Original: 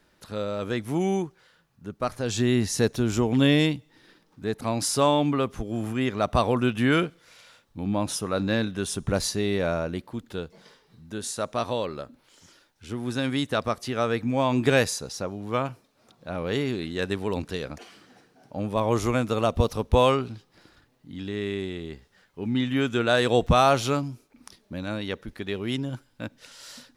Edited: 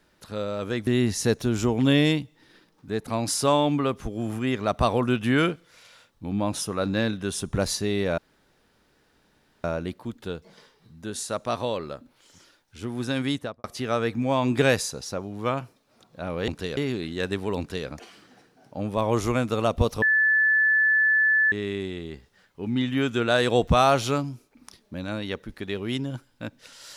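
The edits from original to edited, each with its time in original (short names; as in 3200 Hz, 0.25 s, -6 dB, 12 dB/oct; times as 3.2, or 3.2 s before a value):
0.87–2.41 cut
9.72 insert room tone 1.46 s
13.38–13.72 studio fade out
17.38–17.67 copy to 16.56
19.81–21.31 bleep 1740 Hz -17 dBFS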